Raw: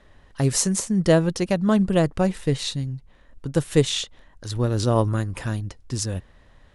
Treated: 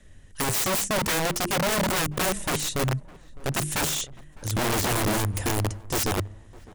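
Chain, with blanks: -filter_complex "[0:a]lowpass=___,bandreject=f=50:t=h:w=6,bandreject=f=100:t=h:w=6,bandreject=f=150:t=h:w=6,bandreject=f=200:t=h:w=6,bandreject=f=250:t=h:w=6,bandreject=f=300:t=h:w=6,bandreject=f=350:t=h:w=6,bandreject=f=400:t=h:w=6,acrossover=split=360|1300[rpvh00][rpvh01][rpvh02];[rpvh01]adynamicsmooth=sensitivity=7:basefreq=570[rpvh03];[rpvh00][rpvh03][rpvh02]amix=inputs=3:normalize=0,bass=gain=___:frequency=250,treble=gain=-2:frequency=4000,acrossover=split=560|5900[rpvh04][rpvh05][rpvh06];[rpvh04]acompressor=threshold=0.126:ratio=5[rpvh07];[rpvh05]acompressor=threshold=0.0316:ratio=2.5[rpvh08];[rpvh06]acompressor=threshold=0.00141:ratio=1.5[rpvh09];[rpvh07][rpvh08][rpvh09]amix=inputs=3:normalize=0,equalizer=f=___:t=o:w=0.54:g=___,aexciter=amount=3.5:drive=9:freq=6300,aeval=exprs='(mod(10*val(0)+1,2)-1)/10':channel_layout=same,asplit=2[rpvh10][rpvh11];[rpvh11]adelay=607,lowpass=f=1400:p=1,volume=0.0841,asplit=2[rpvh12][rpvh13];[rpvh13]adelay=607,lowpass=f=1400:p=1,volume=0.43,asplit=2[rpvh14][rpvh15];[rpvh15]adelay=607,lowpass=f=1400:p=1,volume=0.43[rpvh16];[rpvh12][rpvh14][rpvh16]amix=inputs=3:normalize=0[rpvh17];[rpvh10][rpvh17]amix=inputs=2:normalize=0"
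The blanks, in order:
9400, 4, 97, 3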